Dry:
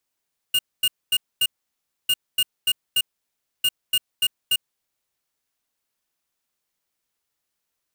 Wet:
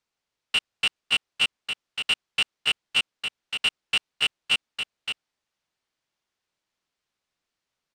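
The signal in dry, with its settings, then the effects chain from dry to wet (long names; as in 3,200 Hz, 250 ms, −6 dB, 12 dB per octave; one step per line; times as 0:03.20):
beeps in groups square 2,840 Hz, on 0.05 s, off 0.24 s, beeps 4, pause 0.63 s, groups 3, −19 dBFS
sub-harmonics by changed cycles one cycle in 2, inverted
low-pass filter 5,300 Hz 12 dB per octave
single-tap delay 565 ms −7 dB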